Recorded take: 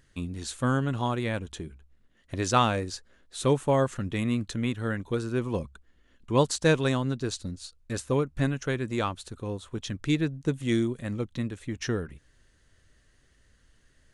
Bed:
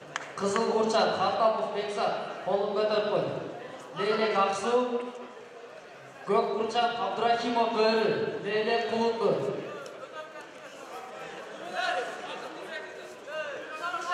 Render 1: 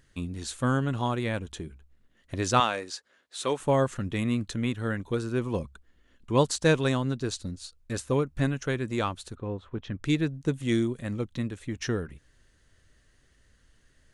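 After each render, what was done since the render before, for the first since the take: 2.6–3.6 weighting filter A; 9.35–10.04 LPF 2200 Hz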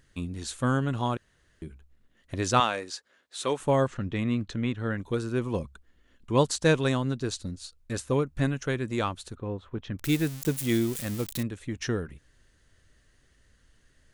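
1.17–1.62 room tone; 3.87–4.98 air absorption 100 m; 9.99–11.43 switching spikes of -24.5 dBFS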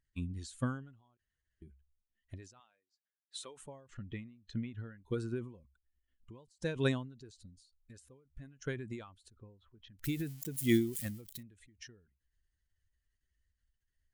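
per-bin expansion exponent 1.5; ending taper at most 100 dB/s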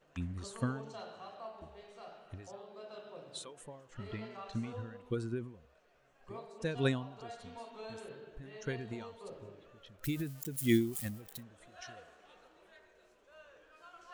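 add bed -22.5 dB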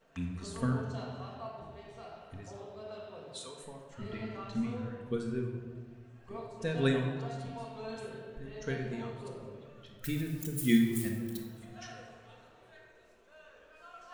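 shoebox room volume 1200 m³, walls mixed, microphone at 1.6 m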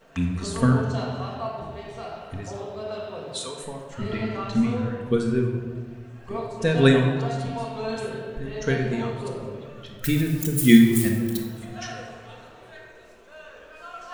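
gain +12 dB

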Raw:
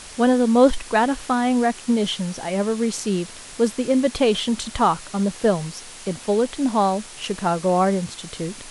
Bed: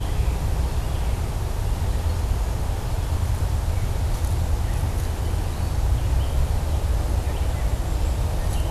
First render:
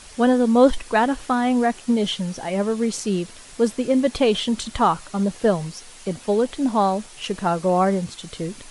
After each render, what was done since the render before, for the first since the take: denoiser 6 dB, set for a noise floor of -40 dBFS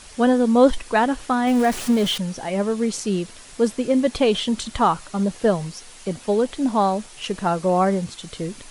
1.47–2.18 zero-crossing step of -26.5 dBFS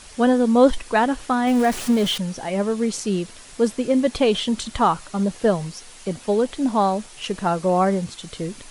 nothing audible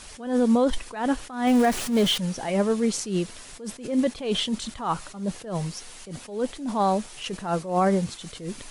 limiter -13 dBFS, peak gain reduction 9.5 dB; attack slew limiter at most 120 dB/s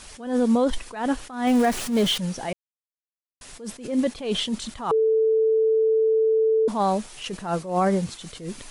2.53–3.41 mute; 4.91–6.68 bleep 442 Hz -16.5 dBFS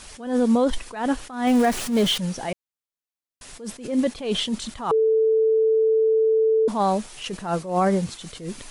gain +1 dB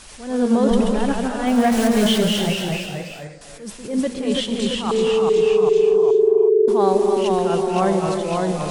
non-linear reverb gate 0.34 s rising, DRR 5 dB; echoes that change speed 89 ms, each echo -1 st, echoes 3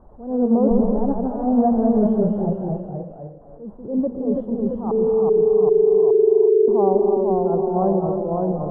inverse Chebyshev low-pass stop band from 2200 Hz, stop band 50 dB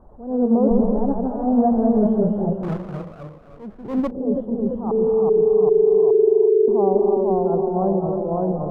2.63–4.11 minimum comb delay 0.42 ms; 6.28–6.96 LPF 1100 Hz 6 dB/oct; 7.69–8.13 air absorption 490 m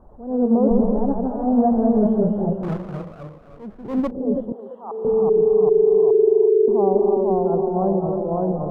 4.52–5.05 HPF 750 Hz

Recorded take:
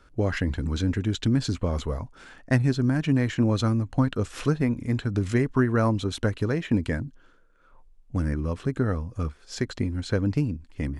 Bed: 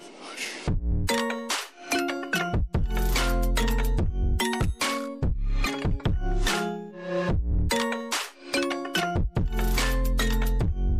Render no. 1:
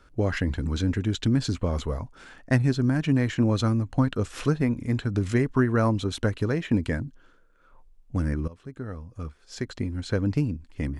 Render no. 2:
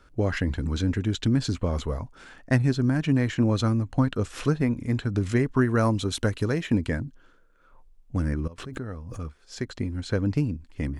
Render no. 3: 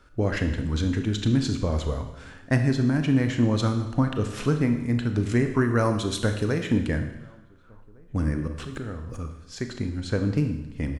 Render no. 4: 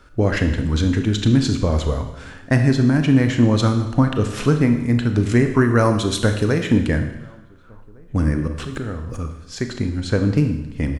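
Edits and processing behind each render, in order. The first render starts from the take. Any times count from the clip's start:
8.48–10.36 fade in, from -18 dB
5.61–6.74 high shelf 4900 Hz +8 dB; 8.58–9.26 backwards sustainer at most 49 dB/s
outdoor echo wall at 250 m, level -28 dB; Schroeder reverb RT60 0.96 s, combs from 26 ms, DRR 6 dB
gain +6.5 dB; limiter -3 dBFS, peak gain reduction 2 dB

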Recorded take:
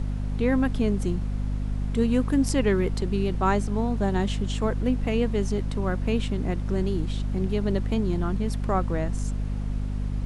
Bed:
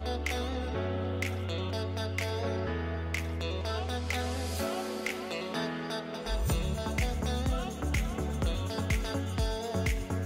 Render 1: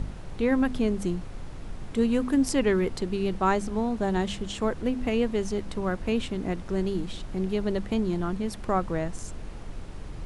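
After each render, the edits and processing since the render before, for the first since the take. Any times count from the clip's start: de-hum 50 Hz, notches 5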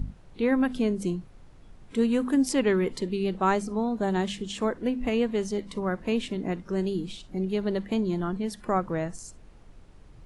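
noise print and reduce 13 dB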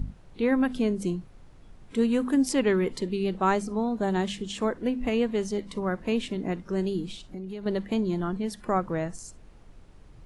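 7.15–7.66 compressor, threshold -33 dBFS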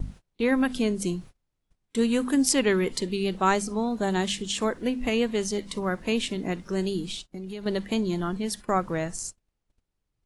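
gate -42 dBFS, range -30 dB; high shelf 2500 Hz +10.5 dB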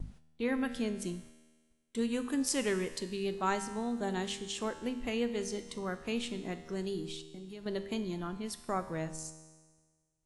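resonator 79 Hz, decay 1.5 s, harmonics all, mix 70%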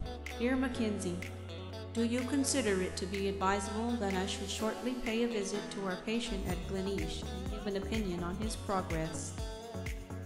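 add bed -10 dB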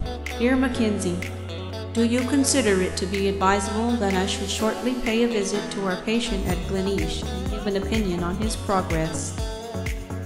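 gain +11.5 dB

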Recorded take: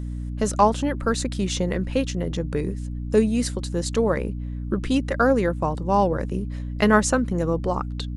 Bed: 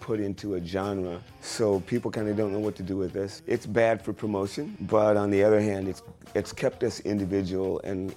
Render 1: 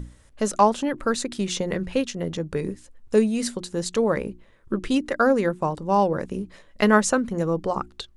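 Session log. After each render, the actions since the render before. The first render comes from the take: notches 60/120/180/240/300/360 Hz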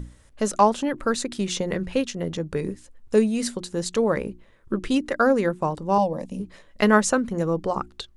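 5.98–6.4 fixed phaser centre 390 Hz, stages 6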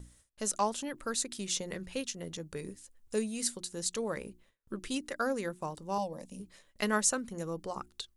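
gate with hold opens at -41 dBFS; pre-emphasis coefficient 0.8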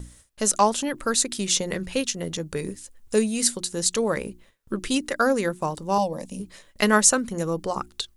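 gain +11 dB

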